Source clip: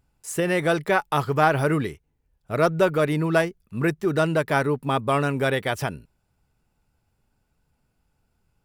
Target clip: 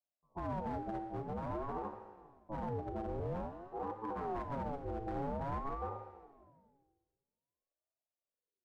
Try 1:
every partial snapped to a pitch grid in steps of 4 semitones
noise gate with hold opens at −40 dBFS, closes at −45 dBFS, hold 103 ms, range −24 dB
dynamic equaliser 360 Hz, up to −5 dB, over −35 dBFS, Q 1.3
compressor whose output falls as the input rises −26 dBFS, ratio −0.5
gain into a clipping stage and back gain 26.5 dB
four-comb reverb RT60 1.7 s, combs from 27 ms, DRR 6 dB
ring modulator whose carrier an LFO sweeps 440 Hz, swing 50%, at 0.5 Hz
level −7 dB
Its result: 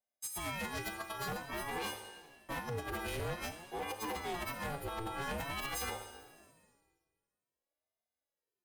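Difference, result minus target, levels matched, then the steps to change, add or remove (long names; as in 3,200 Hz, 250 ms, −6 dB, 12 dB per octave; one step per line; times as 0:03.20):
500 Hz band −3.0 dB
add after dynamic equaliser: Butterworth low-pass 590 Hz 72 dB per octave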